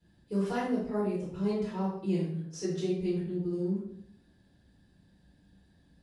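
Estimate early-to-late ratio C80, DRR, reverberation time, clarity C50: 6.0 dB, -12.5 dB, 0.70 s, 1.5 dB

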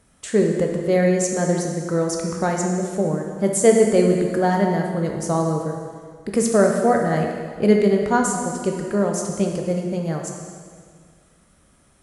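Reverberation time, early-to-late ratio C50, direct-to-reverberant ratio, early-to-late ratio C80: 1.9 s, 3.0 dB, 1.0 dB, 4.5 dB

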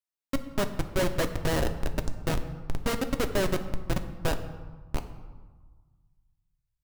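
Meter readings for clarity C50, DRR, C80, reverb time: 11.0 dB, 7.0 dB, 12.5 dB, 1.4 s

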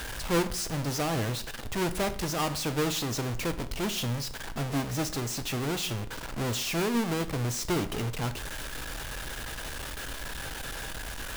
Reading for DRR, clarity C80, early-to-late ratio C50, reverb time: 9.5 dB, 18.0 dB, 14.5 dB, 0.55 s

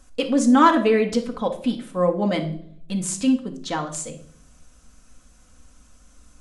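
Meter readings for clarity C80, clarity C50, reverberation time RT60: 16.0 dB, 11.0 dB, 0.60 s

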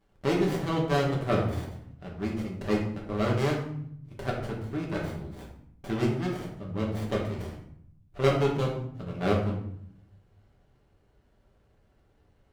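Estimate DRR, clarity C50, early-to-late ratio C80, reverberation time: -3.0 dB, 5.0 dB, 8.5 dB, 0.65 s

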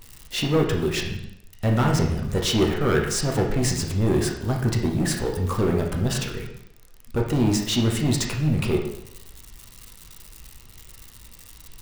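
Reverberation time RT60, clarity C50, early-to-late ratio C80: 0.80 s, 5.0 dB, 8.0 dB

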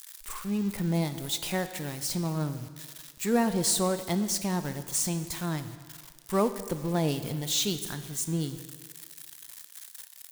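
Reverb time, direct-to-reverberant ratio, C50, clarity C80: 1.7 s, 10.0 dB, 11.5 dB, 12.5 dB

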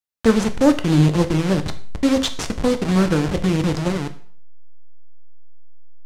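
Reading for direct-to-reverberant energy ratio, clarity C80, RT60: 8.0 dB, 17.5 dB, 0.50 s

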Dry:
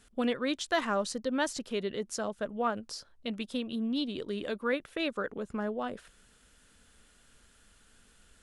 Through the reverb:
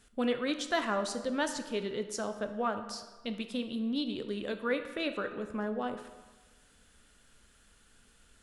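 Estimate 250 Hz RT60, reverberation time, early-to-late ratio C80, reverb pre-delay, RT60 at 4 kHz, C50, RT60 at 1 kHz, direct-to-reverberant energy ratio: 1.3 s, 1.3 s, 11.5 dB, 11 ms, 0.95 s, 9.5 dB, 1.3 s, 7.5 dB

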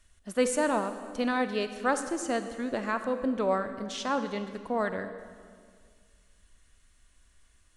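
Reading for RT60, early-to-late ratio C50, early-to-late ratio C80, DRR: 1.9 s, 9.5 dB, 10.5 dB, 9.0 dB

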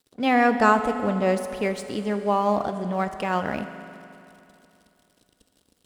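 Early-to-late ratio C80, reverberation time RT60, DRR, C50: 10.5 dB, 2.8 s, 8.5 dB, 10.0 dB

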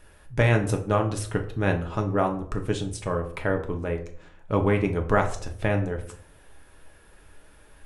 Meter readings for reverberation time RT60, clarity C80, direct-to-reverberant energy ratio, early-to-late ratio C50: 0.60 s, 15.5 dB, 3.5 dB, 11.5 dB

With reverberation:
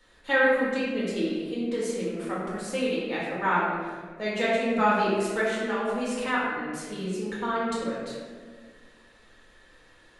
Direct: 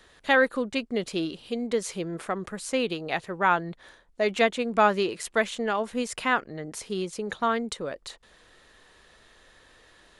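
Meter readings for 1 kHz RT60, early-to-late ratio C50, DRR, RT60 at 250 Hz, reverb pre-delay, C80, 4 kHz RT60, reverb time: 1.4 s, -1.5 dB, -8.0 dB, 2.3 s, 3 ms, 1.0 dB, 0.95 s, 1.6 s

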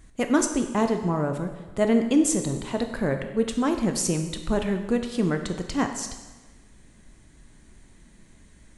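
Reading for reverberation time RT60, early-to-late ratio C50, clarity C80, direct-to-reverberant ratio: 1.2 s, 8.0 dB, 9.5 dB, 5.5 dB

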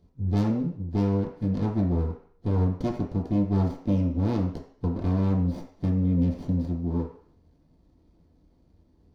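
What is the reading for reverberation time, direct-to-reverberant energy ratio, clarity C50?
0.55 s, -3.5 dB, 6.5 dB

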